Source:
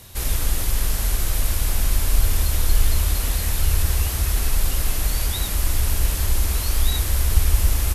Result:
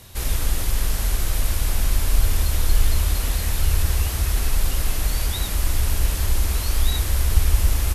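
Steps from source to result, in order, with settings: high shelf 8000 Hz -4 dB

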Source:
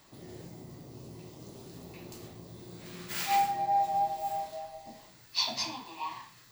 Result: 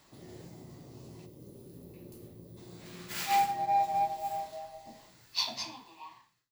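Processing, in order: ending faded out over 1.29 s; spectral gain 1.26–2.57, 620–8900 Hz -11 dB; added harmonics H 7 -30 dB, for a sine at -16 dBFS

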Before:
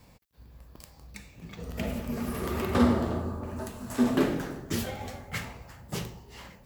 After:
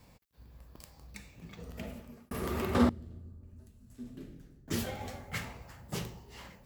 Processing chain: 1.3–2.31 fade out; 2.89–4.68 passive tone stack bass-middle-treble 10-0-1; gain -3 dB

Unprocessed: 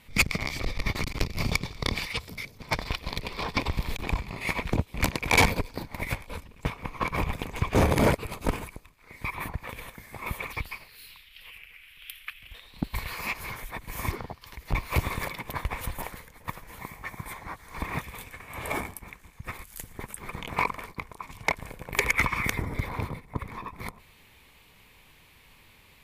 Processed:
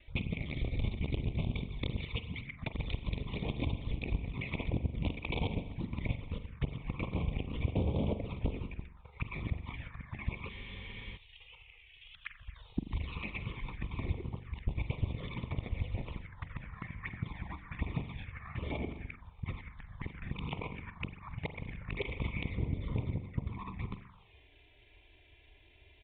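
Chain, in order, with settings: local time reversal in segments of 76 ms; HPF 71 Hz 6 dB/oct; low shelf 180 Hz +8.5 dB; compressor 6:1, threshold -29 dBFS, peak gain reduction 13.5 dB; envelope flanger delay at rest 3.5 ms, full sweep at -28.5 dBFS; spring tank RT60 1 s, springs 42 ms, chirp 50 ms, DRR 9 dB; envelope phaser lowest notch 160 Hz, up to 1600 Hz, full sweep at -34.5 dBFS; downsampling 8000 Hz; spectral freeze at 10.52, 0.64 s

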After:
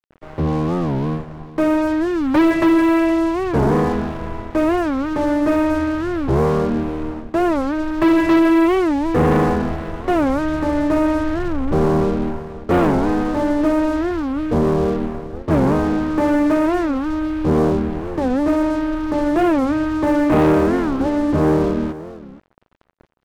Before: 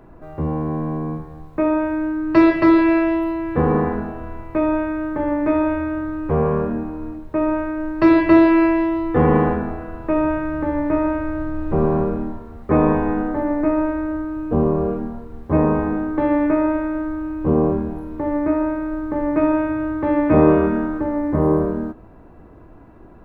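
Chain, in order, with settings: Bessel low-pass 3400 Hz; sample leveller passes 3; crossover distortion -30.5 dBFS; echo 0.473 s -16.5 dB; record warp 45 rpm, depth 250 cents; gain -6 dB

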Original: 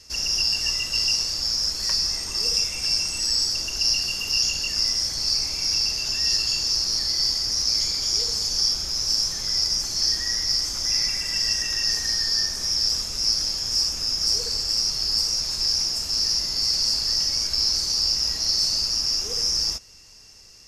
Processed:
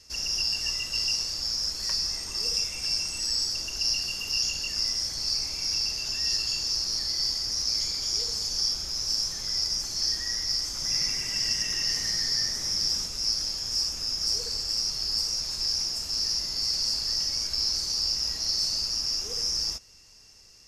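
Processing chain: 10.69–13.07 frequency-shifting echo 97 ms, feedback 53%, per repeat +110 Hz, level -7 dB; gain -5 dB

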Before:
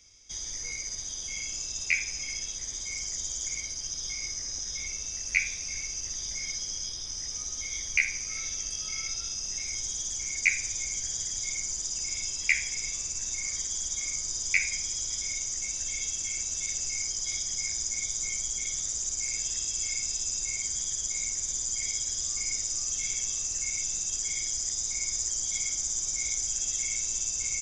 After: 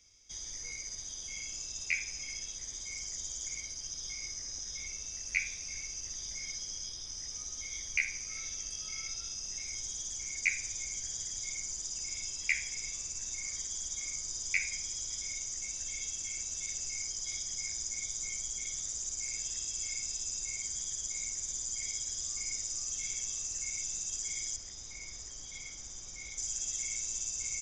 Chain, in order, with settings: 24.56–26.38 Bessel low-pass 3500 Hz, order 2; gain -6 dB

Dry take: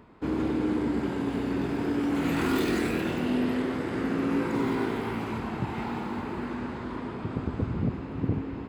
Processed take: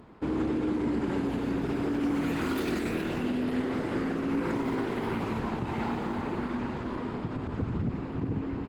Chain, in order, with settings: limiter -23.5 dBFS, peak gain reduction 10 dB; feedback echo 95 ms, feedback 22%, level -22 dB; gain +2.5 dB; Opus 16 kbps 48000 Hz

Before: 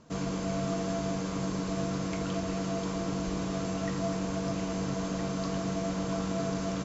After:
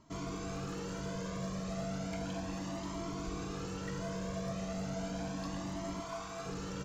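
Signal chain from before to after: hard clip -28 dBFS, distortion -16 dB; 6–6.46 resonant low shelf 520 Hz -8 dB, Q 1.5; cascading flanger rising 0.34 Hz; gain -1 dB

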